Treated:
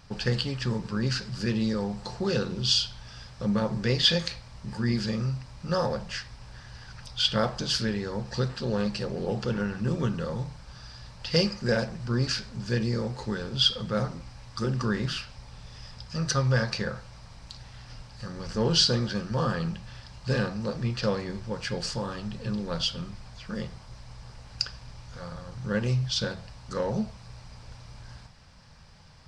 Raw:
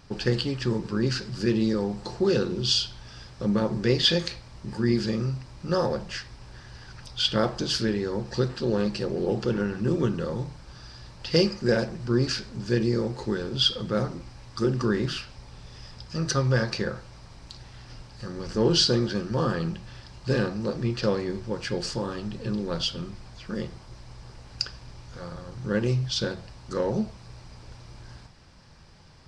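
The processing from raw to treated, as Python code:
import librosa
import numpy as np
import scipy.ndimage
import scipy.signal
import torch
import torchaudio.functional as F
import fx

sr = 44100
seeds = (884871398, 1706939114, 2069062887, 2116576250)

y = fx.peak_eq(x, sr, hz=340.0, db=-11.0, octaves=0.56)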